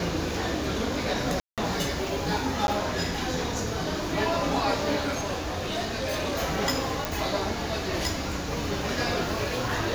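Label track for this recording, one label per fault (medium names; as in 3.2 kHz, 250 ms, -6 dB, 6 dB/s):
1.400000	1.580000	dropout 177 ms
2.670000	2.680000	dropout
5.010000	6.360000	clipped -24.5 dBFS
7.050000	7.050000	pop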